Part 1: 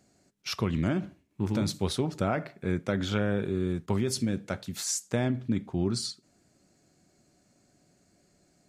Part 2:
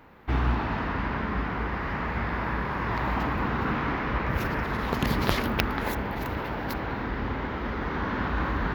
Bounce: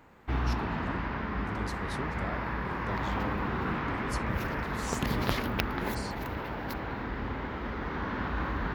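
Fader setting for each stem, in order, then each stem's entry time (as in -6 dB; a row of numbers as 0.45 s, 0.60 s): -11.5 dB, -4.5 dB; 0.00 s, 0.00 s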